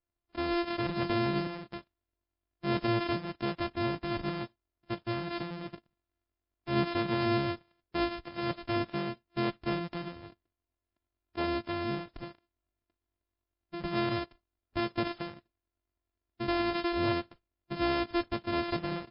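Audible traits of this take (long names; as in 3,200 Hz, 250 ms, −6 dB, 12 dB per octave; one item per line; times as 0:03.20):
a buzz of ramps at a fixed pitch in blocks of 128 samples
MP3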